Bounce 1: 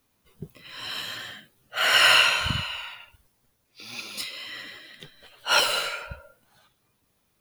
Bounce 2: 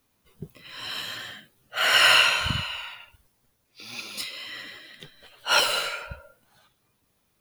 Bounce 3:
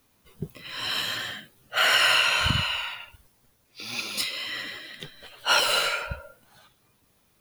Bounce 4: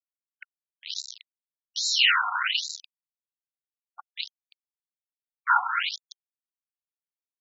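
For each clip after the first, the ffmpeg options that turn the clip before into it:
-af anull
-af "acompressor=threshold=0.0708:ratio=5,volume=1.78"
-af "aeval=exprs='val(0)*gte(abs(val(0)),0.0794)':c=same,afftfilt=real='re*between(b*sr/1024,980*pow(5400/980,0.5+0.5*sin(2*PI*1.2*pts/sr))/1.41,980*pow(5400/980,0.5+0.5*sin(2*PI*1.2*pts/sr))*1.41)':imag='im*between(b*sr/1024,980*pow(5400/980,0.5+0.5*sin(2*PI*1.2*pts/sr))/1.41,980*pow(5400/980,0.5+0.5*sin(2*PI*1.2*pts/sr))*1.41)':win_size=1024:overlap=0.75,volume=1.78"

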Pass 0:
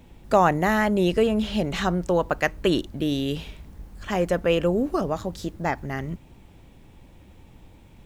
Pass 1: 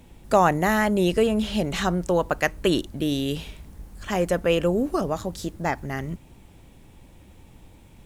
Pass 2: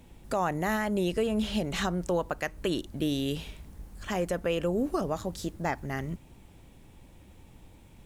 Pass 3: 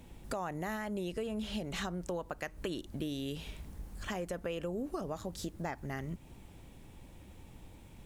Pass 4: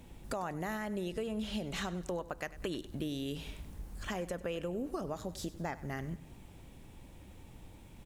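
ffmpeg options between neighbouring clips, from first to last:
-af "equalizer=f=10000:w=0.76:g=7"
-af "alimiter=limit=0.178:level=0:latency=1:release=205,volume=0.668"
-af "acompressor=threshold=0.0141:ratio=3"
-af "aecho=1:1:98|196|294|392:0.141|0.0636|0.0286|0.0129"

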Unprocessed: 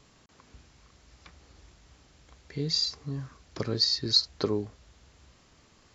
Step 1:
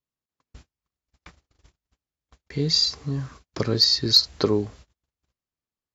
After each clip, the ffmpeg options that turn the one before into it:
-af "agate=range=0.00794:threshold=0.00282:ratio=16:detection=peak,acontrast=81"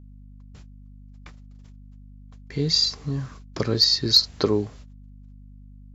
-af "aeval=exprs='val(0)+0.00631*(sin(2*PI*50*n/s)+sin(2*PI*2*50*n/s)/2+sin(2*PI*3*50*n/s)/3+sin(2*PI*4*50*n/s)/4+sin(2*PI*5*50*n/s)/5)':c=same"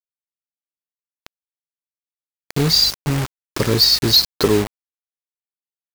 -filter_complex "[0:a]asplit=2[s0][s1];[s1]aeval=exprs='0.596*sin(PI/2*3.16*val(0)/0.596)':c=same,volume=0.266[s2];[s0][s2]amix=inputs=2:normalize=0,acrusher=bits=3:mix=0:aa=0.000001"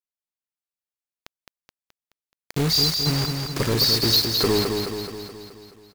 -filter_complex "[0:a]asoftclip=type=hard:threshold=0.251,asplit=2[s0][s1];[s1]aecho=0:1:213|426|639|852|1065|1278|1491|1704:0.562|0.321|0.183|0.104|0.0594|0.0338|0.0193|0.011[s2];[s0][s2]amix=inputs=2:normalize=0,volume=0.631"

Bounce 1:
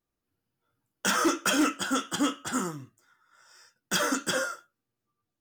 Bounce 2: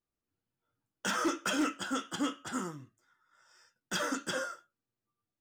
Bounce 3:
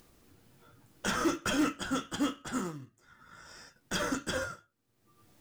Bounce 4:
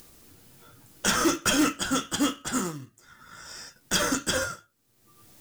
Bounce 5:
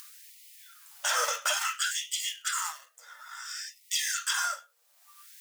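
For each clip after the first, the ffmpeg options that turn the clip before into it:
-af "highshelf=f=9500:g=-9.5,volume=0.501"
-filter_complex "[0:a]asplit=2[s0][s1];[s1]acrusher=samples=29:mix=1:aa=0.000001,volume=0.398[s2];[s0][s2]amix=inputs=2:normalize=0,acompressor=mode=upward:threshold=0.01:ratio=2.5"
-af "highshelf=f=3800:g=9.5,volume=1.78"
-af "alimiter=limit=0.0891:level=0:latency=1:release=12,afftfilt=real='re*gte(b*sr/1024,450*pow(1900/450,0.5+0.5*sin(2*PI*0.58*pts/sr)))':imag='im*gte(b*sr/1024,450*pow(1900/450,0.5+0.5*sin(2*PI*0.58*pts/sr)))':win_size=1024:overlap=0.75,volume=1.58"

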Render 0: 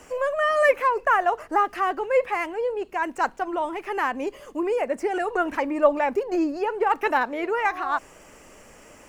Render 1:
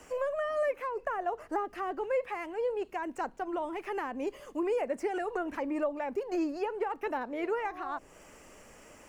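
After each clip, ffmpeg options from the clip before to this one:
-filter_complex "[0:a]acrossover=split=640[s0][s1];[s0]alimiter=limit=0.0944:level=0:latency=1:release=498[s2];[s1]acompressor=threshold=0.0251:ratio=6[s3];[s2][s3]amix=inputs=2:normalize=0,volume=0.562"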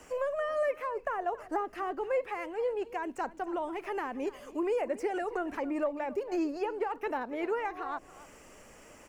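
-af "aecho=1:1:277:0.126"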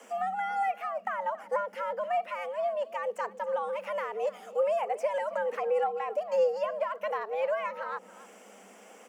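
-af "equalizer=f=310:w=2.7:g=7,afreqshift=190"

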